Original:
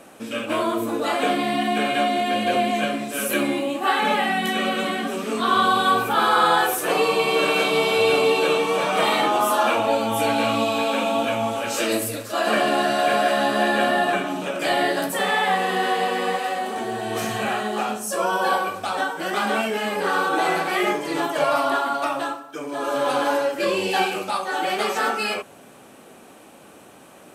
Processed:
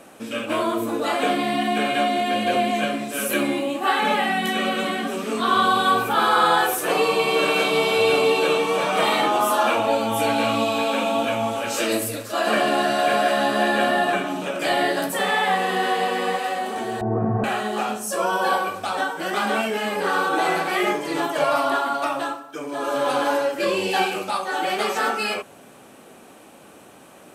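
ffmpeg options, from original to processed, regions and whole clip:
-filter_complex "[0:a]asettb=1/sr,asplit=3[s0][s1][s2];[s0]atrim=end=17.014[s3];[s1]atrim=start=17.01:end=17.44,asetpts=PTS-STARTPTS,afade=t=in:d=0.004:c=qsin,afade=t=out:st=0.426:d=0.004:c=qsin,lowpass=f=1200:w=0.5412,lowpass=f=1200:w=1.3066,aemphasis=mode=reproduction:type=riaa[s4];[s2]atrim=start=17.436[s5];[s3][s4]acrossfade=d=0.004:c1=hsin:c2=qsin[s6];[s6][s5]acrossfade=d=0.004:c1=qsin:c2=hsin"

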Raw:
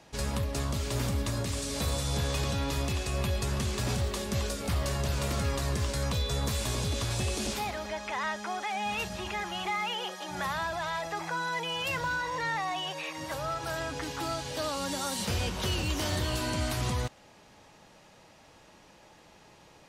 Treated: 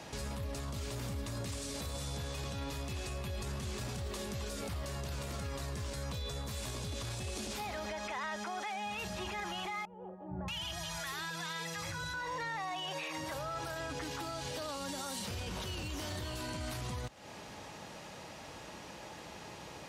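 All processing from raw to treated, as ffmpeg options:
-filter_complex "[0:a]asettb=1/sr,asplit=3[s0][s1][s2];[s0]atrim=end=9.854[s3];[s1]atrim=start=9.85:end=12.14,asetpts=PTS-STARTPTS,afade=t=in:d=0.004:c=qsin,afade=t=out:st=2.286:d=0.004:c=qsin,equalizer=f=550:w=0.36:g=-12.5,acrossover=split=790[s4][s5];[s5]adelay=630[s6];[s4][s6]amix=inputs=2:normalize=0,atrim=end_sample=100989[s7];[s2]atrim=start=12.136[s8];[s3][s7]acrossfade=d=0.004:c1=hsin:c2=qsin[s9];[s9][s8]acrossfade=d=0.004:c1=qsin:c2=hsin,acompressor=threshold=0.00794:ratio=6,highpass=f=47:w=0.5412,highpass=f=47:w=1.3066,alimiter=level_in=5.96:limit=0.0631:level=0:latency=1:release=19,volume=0.168,volume=2.51"

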